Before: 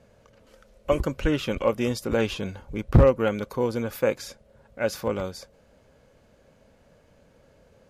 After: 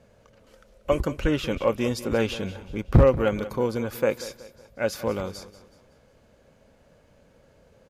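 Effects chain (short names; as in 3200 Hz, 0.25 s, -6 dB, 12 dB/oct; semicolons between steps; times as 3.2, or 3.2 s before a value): feedback echo 0.186 s, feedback 41%, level -15.5 dB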